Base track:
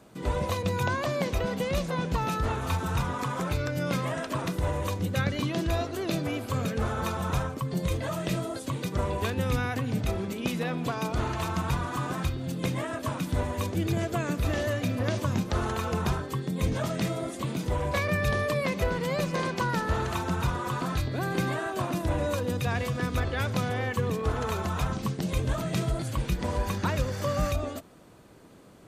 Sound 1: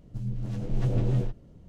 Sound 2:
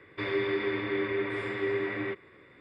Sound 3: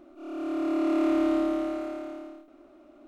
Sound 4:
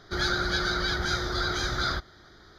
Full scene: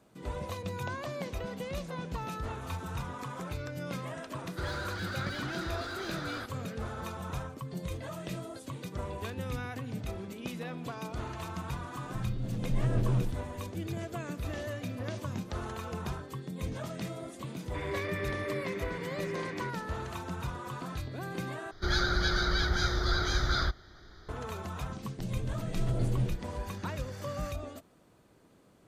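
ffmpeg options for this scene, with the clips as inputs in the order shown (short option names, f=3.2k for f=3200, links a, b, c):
-filter_complex "[4:a]asplit=2[a][b];[1:a]asplit=2[c][d];[0:a]volume=-9dB[e];[a]asplit=2[f][g];[g]highpass=f=720:p=1,volume=23dB,asoftclip=type=tanh:threshold=-14.5dB[h];[f][h]amix=inputs=2:normalize=0,lowpass=f=2.2k:p=1,volume=-6dB[i];[b]lowshelf=f=75:g=11.5[j];[e]asplit=2[k][l];[k]atrim=end=21.714[m];[j]atrim=end=2.58,asetpts=PTS-STARTPTS,volume=-3dB[n];[l]atrim=start=24.286[o];[i]atrim=end=2.58,asetpts=PTS-STARTPTS,volume=-16.5dB,afade=t=in:d=0.004:c=hsin,afade=t=out:st=2.576:d=0.004:c=hsin,adelay=4460[p];[c]atrim=end=1.68,asetpts=PTS-STARTPTS,volume=-3dB,afade=t=in:d=0.004:c=hsin,afade=t=out:st=1.676:d=0.004:c=hsin,adelay=12000[q];[2:a]atrim=end=2.6,asetpts=PTS-STARTPTS,volume=-8.5dB,afade=t=in:d=0.004:c=hsin,afade=t=out:st=2.596:d=0.004:c=hsin,adelay=17560[r];[d]atrim=end=1.68,asetpts=PTS-STARTPTS,volume=-5dB,afade=t=in:d=0.004:c=hsin,afade=t=out:st=1.676:d=0.004:c=hsin,adelay=25050[s];[m][n]acrossfade=d=0.004:c1=hsin:c2=hsin[t];[t][o]acrossfade=d=0.004:c1=hsin:c2=hsin[u];[u][p][q][r][s]amix=inputs=5:normalize=0"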